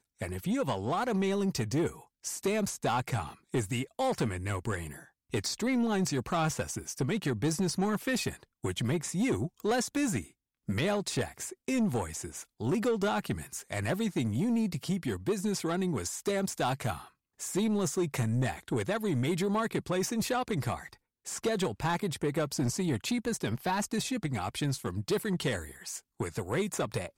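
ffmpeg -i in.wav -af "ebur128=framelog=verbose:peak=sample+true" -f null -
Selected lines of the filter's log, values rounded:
Integrated loudness:
  I:         -31.9 LUFS
  Threshold: -42.1 LUFS
Loudness range:
  LRA:         1.7 LU
  Threshold: -52.0 LUFS
  LRA low:   -32.8 LUFS
  LRA high:  -31.1 LUFS
Sample peak:
  Peak:      -22.8 dBFS
True peak:
  Peak:      -22.7 dBFS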